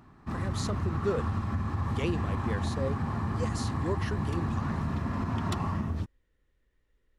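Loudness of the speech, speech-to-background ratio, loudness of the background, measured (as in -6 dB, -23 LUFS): -37.0 LUFS, -5.0 dB, -32.0 LUFS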